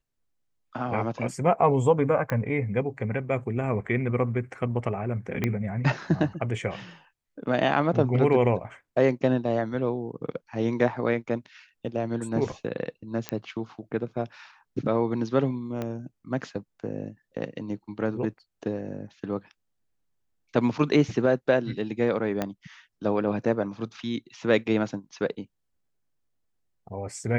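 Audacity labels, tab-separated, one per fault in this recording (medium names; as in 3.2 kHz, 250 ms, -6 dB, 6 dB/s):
2.300000	2.300000	pop -16 dBFS
5.440000	5.440000	pop -12 dBFS
13.290000	13.290000	pop -13 dBFS
15.820000	15.820000	pop -18 dBFS
22.420000	22.420000	pop -13 dBFS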